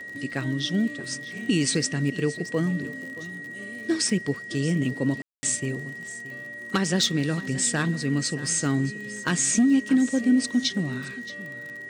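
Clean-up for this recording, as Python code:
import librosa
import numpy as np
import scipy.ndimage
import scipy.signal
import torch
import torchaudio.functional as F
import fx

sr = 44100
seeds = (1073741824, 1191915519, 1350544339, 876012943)

y = fx.fix_declick_ar(x, sr, threshold=6.5)
y = fx.notch(y, sr, hz=1900.0, q=30.0)
y = fx.fix_ambience(y, sr, seeds[0], print_start_s=6.21, print_end_s=6.71, start_s=5.22, end_s=5.43)
y = fx.fix_echo_inverse(y, sr, delay_ms=625, level_db=-16.5)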